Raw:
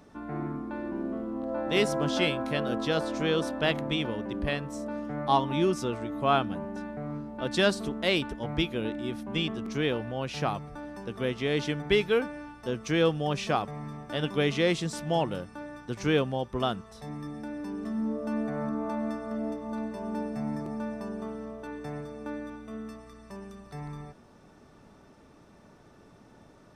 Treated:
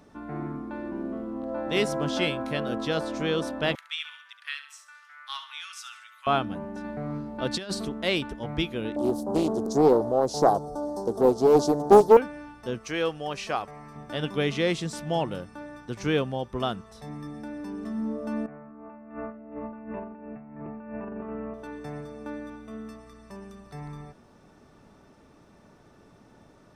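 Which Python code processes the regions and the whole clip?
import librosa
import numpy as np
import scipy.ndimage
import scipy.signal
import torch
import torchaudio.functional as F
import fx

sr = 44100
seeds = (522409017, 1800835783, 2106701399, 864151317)

y = fx.chain(x, sr, fx.ellip_highpass(hz=1300.0, order=4, stop_db=70),
    fx.echo_feedback(ms=70, feedback_pct=40, wet_db=-11.5), at=(3.75, 6.27))
y = fx.chain(y, sr, fx.over_compress(threshold_db=-28.0, ratio=-0.5),
    fx.peak_eq(hz=4400.0, db=4.5, octaves=0.33), at=(6.84, 7.85))
y = fx.chain(y, sr, fx.curve_eq(hz=(160.0, 410.0, 810.0, 2500.0, 4300.0, 7500.0), db=(0, 12, 12, -29, 6, 12)),
    fx.doppler_dist(depth_ms=0.58), at=(8.96, 12.17))
y = fx.chain(y, sr, fx.peak_eq(hz=160.0, db=-10.5, octaves=2.1),
    fx.notch(hz=3500.0, q=12.0), at=(12.78, 13.96))
y = fx.chain(y, sr, fx.ellip_lowpass(hz=2700.0, order=4, stop_db=40),
    fx.over_compress(threshold_db=-38.0, ratio=-0.5), at=(18.46, 21.54))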